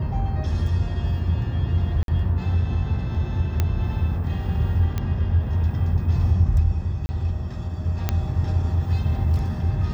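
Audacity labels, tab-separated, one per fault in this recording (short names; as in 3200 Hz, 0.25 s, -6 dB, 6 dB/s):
2.030000	2.080000	gap 52 ms
3.600000	3.600000	pop -9 dBFS
4.980000	4.980000	pop -13 dBFS
7.060000	7.090000	gap 30 ms
8.090000	8.090000	pop -8 dBFS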